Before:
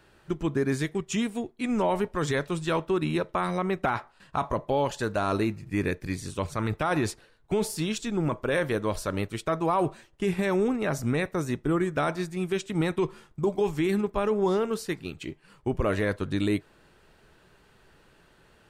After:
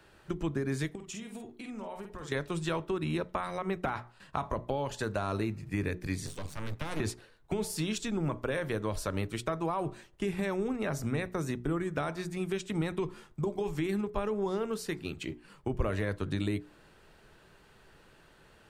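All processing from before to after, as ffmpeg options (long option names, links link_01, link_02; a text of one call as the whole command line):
ffmpeg -i in.wav -filter_complex "[0:a]asettb=1/sr,asplit=3[link_01][link_02][link_03];[link_01]atrim=end=0.954[link_04];[link_02]atrim=start=0.95:end=2.32,asetpts=PTS-STARTPTS,afade=type=in:duration=0.004:curve=qsin,afade=type=out:start_time=1.366:duration=0.004:curve=qsin,acompressor=threshold=-39dB:ratio=8:attack=3.2:release=140:knee=1:detection=peak,asplit=2[link_05][link_06];[link_06]adelay=50,volume=-5dB[link_07];[link_05][link_07]amix=inputs=2:normalize=0,atrim=end_sample=60417[link_08];[link_03]atrim=start=2.316[link_09];[link_04][link_08]acrossfade=duration=0.004:curve1=hsin:curve2=qsin[link_10];[link_10][link_09]acrossfade=duration=0.004:curve1=qsin:curve2=hsin,asettb=1/sr,asplit=3[link_11][link_12][link_13];[link_11]atrim=end=6.264[link_14];[link_12]atrim=start=6.26:end=7,asetpts=PTS-STARTPTS,afade=type=in:duration=0.004:curve=qsin,afade=type=out:start_time=0.736:duration=0.004:curve=qsin,acrossover=split=320|3000[link_15][link_16][link_17];[link_16]acompressor=threshold=-48dB:ratio=1.5:attack=3.2:release=140:knee=2.83:detection=peak[link_18];[link_15][link_18][link_17]amix=inputs=3:normalize=0,aeval=exprs='max(val(0),0)':channel_layout=same[link_19];[link_13]atrim=start=6.996[link_20];[link_14][link_19]acrossfade=duration=0.004:curve1=hsin:curve2=qsin[link_21];[link_21][link_20]acrossfade=duration=0.004:curve1=qsin:curve2=hsin,acrossover=split=120[link_22][link_23];[link_23]acompressor=threshold=-30dB:ratio=4[link_24];[link_22][link_24]amix=inputs=2:normalize=0,bandreject=frequency=60:width_type=h:width=6,bandreject=frequency=120:width_type=h:width=6,bandreject=frequency=180:width_type=h:width=6,bandreject=frequency=240:width_type=h:width=6,bandreject=frequency=300:width_type=h:width=6,bandreject=frequency=360:width_type=h:width=6,bandreject=frequency=420:width_type=h:width=6" out.wav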